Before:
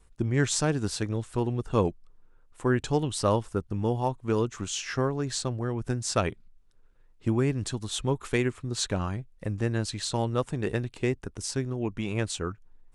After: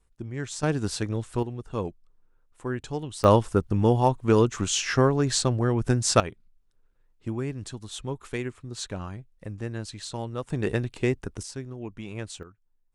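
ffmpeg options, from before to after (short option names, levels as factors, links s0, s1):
-af "asetnsamples=n=441:p=0,asendcmd='0.63 volume volume 1dB;1.43 volume volume -6dB;3.24 volume volume 6.5dB;6.2 volume volume -5.5dB;10.5 volume volume 2.5dB;11.43 volume volume -6.5dB;12.43 volume volume -17dB',volume=0.376"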